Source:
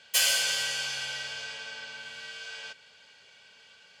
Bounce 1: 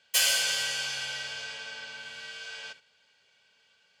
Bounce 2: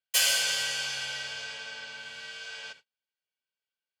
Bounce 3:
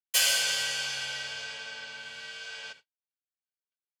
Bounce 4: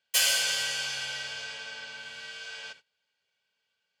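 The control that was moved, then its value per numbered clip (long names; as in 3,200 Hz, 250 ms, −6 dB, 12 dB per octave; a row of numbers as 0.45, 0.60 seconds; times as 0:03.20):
noise gate, range: −10, −39, −56, −24 decibels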